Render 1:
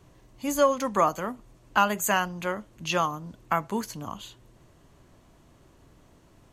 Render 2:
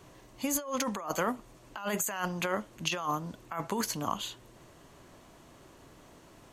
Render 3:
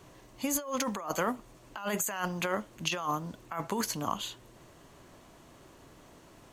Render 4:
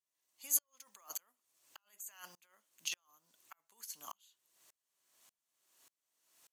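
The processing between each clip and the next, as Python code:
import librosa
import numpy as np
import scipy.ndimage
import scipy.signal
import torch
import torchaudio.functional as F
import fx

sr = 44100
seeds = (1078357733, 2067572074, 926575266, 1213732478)

y1 = fx.low_shelf(x, sr, hz=180.0, db=-10.5)
y1 = fx.over_compress(y1, sr, threshold_db=-33.0, ratio=-1.0)
y2 = fx.quant_companded(y1, sr, bits=8)
y3 = np.diff(y2, prepend=0.0)
y3 = fx.tremolo_decay(y3, sr, direction='swelling', hz=1.7, depth_db=34)
y3 = F.gain(torch.from_numpy(y3), 2.0).numpy()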